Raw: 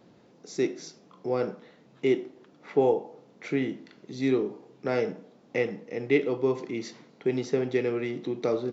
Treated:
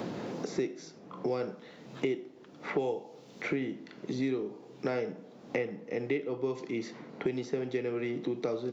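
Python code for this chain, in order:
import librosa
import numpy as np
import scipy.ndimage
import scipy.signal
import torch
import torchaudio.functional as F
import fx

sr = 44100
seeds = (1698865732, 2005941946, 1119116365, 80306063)

y = fx.band_squash(x, sr, depth_pct=100)
y = F.gain(torch.from_numpy(y), -6.0).numpy()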